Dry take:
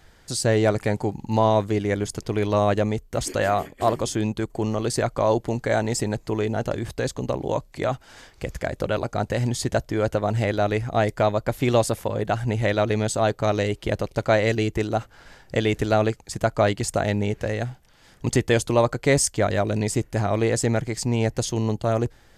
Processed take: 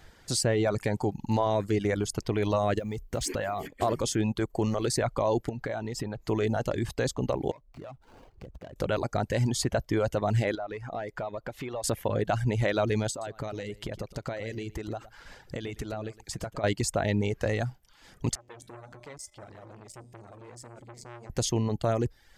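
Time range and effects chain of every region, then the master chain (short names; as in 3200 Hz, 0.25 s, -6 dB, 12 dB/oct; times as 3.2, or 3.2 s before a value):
2.79–3.68 G.711 law mismatch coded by mu + compressor 12:1, threshold -25 dBFS + mismatched tape noise reduction decoder only
5.49–6.22 bell 8900 Hz -11.5 dB 1.2 oct + compressor 12:1, threshold -27 dBFS
7.51–8.76 median filter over 25 samples + high shelf 11000 Hz -5.5 dB + compressor 5:1, threshold -41 dBFS
10.55–11.84 compressor 8:1, threshold -32 dBFS + overdrive pedal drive 13 dB, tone 1600 Hz, clips at -22 dBFS
13.1–16.64 compressor 16:1, threshold -30 dBFS + echo 0.112 s -10.5 dB
18.35–21.3 compressor 12:1, threshold -22 dBFS + resonator 120 Hz, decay 1.4 s, harmonics odd, mix 80% + core saturation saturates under 1300 Hz
whole clip: limiter -16 dBFS; bell 10000 Hz -2 dB; reverb removal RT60 0.6 s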